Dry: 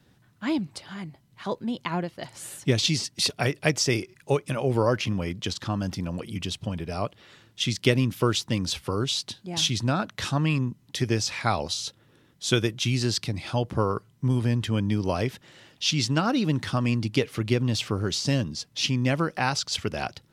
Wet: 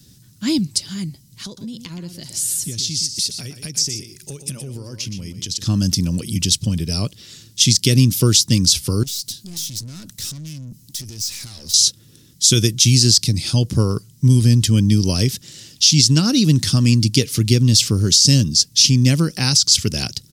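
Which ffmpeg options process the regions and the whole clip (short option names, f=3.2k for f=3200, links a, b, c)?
-filter_complex "[0:a]asettb=1/sr,asplit=3[a][b][c];[a]atrim=end=1.454[d];[b]atrim=start=1.45:end=5.67,asetpts=PTS-STARTPTS,afade=t=in:d=0.004:c=qsin,afade=t=out:st=4.216:d=0.004:c=qsin,acompressor=threshold=-39dB:ratio=4:attack=3.2:release=140:knee=1:detection=peak,aecho=1:1:120:0.335,atrim=end_sample=186102[e];[c]atrim=start=5.666[f];[d][e]acrossfade=d=0.004:c1=hsin:c2=qsin[g];[g][f]acrossfade=d=0.004:c1=qsin:c2=hsin,asettb=1/sr,asplit=3[h][i][j];[h]atrim=end=9.034[k];[i]atrim=start=9.03:end=11.74,asetpts=PTS-STARTPTS,afade=t=in:d=0.004:c=qsin,afade=t=out:st=2.706:d=0.004:c=qsin,highshelf=f=10k:g=7,acompressor=threshold=-34dB:ratio=4:attack=3.2:release=140:knee=1:detection=peak,aeval=exprs='(tanh(126*val(0)+0.3)-tanh(0.3))/126':c=same[l];[j]atrim=start=11.736[m];[k][l]acrossfade=d=0.004:c1=hsin:c2=qsin[n];[n][m]acrossfade=d=0.004:c1=qsin:c2=hsin,firequalizer=gain_entry='entry(160,0);entry(710,-19);entry(5100,10)':delay=0.05:min_phase=1,alimiter=level_in=13dB:limit=-1dB:release=50:level=0:latency=1,volume=-1dB"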